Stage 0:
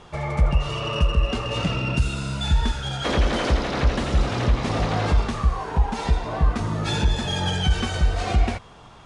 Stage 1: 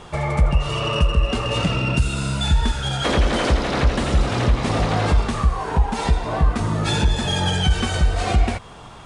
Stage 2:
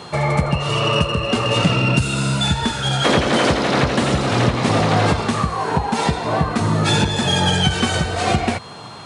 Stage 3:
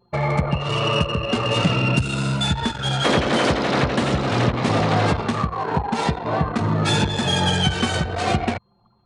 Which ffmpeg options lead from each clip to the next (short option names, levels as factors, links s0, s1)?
-filter_complex "[0:a]asplit=2[s0][s1];[s1]acompressor=threshold=0.0447:ratio=6,volume=1[s2];[s0][s2]amix=inputs=2:normalize=0,aexciter=amount=1.6:drive=4.7:freq=7900"
-af "highpass=f=100:w=0.5412,highpass=f=100:w=1.3066,aeval=exprs='val(0)+0.00447*sin(2*PI*4200*n/s)':c=same,volume=1.78"
-af "anlmdn=1000,volume=0.75"